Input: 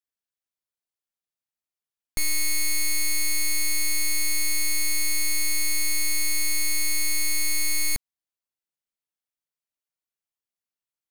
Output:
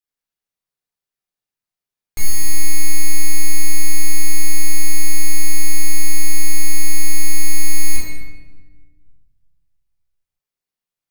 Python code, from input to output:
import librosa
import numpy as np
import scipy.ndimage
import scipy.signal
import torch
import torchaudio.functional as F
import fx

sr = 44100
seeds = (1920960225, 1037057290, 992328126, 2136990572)

y = fx.room_shoebox(x, sr, seeds[0], volume_m3=950.0, walls='mixed', distance_m=3.9)
y = y * librosa.db_to_amplitude(-3.5)